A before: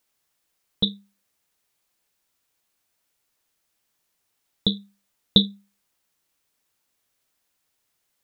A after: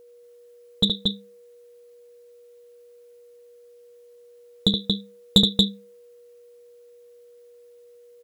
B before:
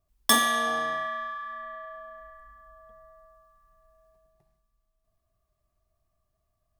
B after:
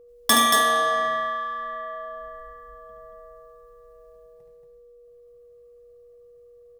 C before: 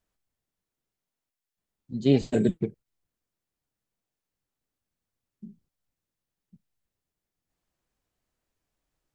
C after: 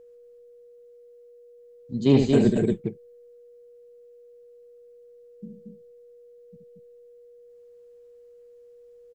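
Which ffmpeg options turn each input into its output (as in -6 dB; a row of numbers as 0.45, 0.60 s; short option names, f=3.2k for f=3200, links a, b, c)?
-af "aecho=1:1:72.89|230.3:0.501|0.631,aeval=exprs='val(0)+0.00282*sin(2*PI*480*n/s)':c=same,acontrast=77,volume=-4dB"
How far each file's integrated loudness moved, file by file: +1.5, +4.5, +4.0 LU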